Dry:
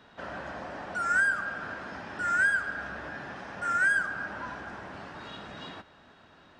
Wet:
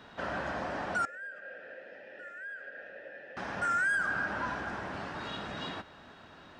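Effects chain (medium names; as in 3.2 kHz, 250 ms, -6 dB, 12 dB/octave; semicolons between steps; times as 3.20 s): peak limiter -26.5 dBFS, peak gain reduction 10 dB; 1.05–3.37 s: vowel filter e; trim +3.5 dB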